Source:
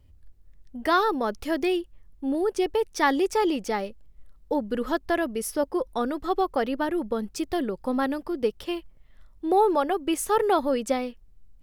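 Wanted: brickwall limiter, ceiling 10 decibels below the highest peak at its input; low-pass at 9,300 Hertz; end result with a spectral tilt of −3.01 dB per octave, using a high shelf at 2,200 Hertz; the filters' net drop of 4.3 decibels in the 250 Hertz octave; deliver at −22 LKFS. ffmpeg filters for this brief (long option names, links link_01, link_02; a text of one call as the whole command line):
ffmpeg -i in.wav -af "lowpass=9300,equalizer=frequency=250:width_type=o:gain=-6,highshelf=frequency=2200:gain=-5,volume=10dB,alimiter=limit=-11.5dB:level=0:latency=1" out.wav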